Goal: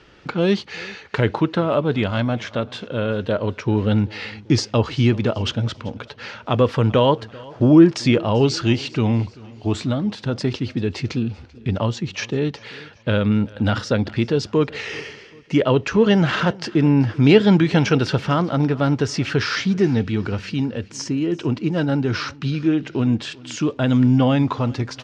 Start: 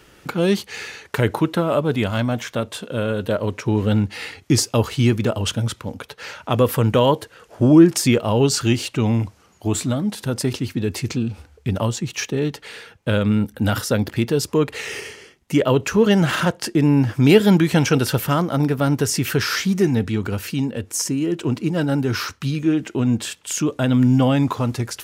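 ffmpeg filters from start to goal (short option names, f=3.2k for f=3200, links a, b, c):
-af "lowpass=f=5.2k:w=0.5412,lowpass=f=5.2k:w=1.3066,aecho=1:1:388|776|1164:0.075|0.0337|0.0152"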